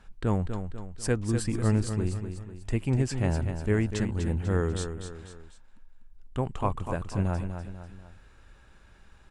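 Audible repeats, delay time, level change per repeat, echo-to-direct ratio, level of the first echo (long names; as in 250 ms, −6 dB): 3, 246 ms, −7.0 dB, −7.0 dB, −8.0 dB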